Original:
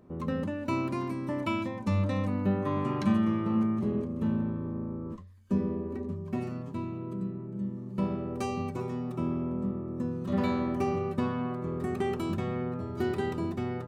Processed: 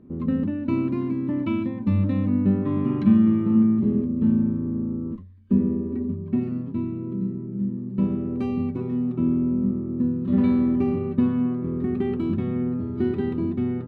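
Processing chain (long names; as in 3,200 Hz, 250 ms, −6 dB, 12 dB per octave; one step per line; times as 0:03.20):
drawn EQ curve 170 Hz 0 dB, 250 Hz +6 dB, 640 Hz −11 dB, 1,200 Hz −10 dB, 2,300 Hz −8 dB, 3,900 Hz −11 dB, 6,200 Hz −26 dB
level +5.5 dB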